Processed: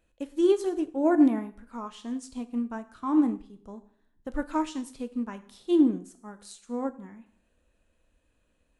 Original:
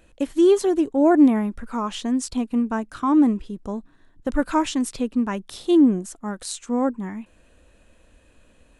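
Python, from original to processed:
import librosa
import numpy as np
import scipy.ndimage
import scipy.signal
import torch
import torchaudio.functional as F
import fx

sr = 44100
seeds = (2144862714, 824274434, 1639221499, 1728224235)

y = fx.rev_plate(x, sr, seeds[0], rt60_s=0.65, hf_ratio=0.85, predelay_ms=0, drr_db=8.0)
y = fx.upward_expand(y, sr, threshold_db=-31.0, expansion=1.5)
y = F.gain(torch.from_numpy(y), -5.0).numpy()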